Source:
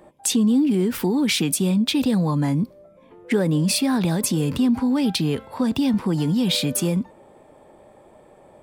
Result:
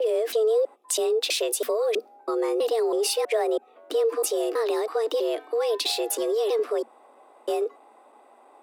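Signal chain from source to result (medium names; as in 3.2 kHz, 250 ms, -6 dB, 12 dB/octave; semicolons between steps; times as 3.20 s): slices played last to first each 325 ms, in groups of 3; frequency shift +220 Hz; trim -4 dB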